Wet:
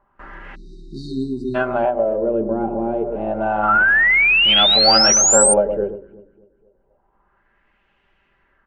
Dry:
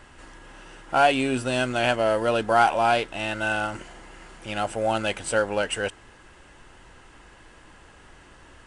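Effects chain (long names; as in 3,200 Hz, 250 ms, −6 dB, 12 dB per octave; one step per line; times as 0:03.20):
noise gate with hold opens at −37 dBFS
comb filter 5.1 ms, depth 50%
delay that swaps between a low-pass and a high-pass 121 ms, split 1,200 Hz, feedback 58%, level −8 dB
auto-filter low-pass sine 0.28 Hz 330–2,700 Hz
0:01.25–0:03.63: downward compressor 6 to 1, threshold −20 dBFS, peak gain reduction 9 dB
0:03.68–0:05.54: sound drawn into the spectrogram rise 1,300–8,900 Hz −19 dBFS
mains-hum notches 60/120/180/240/300/360/420/480/540 Hz
0:00.55–0:01.55: time-frequency box erased 400–3,700 Hz
every ending faded ahead of time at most 160 dB per second
level +5 dB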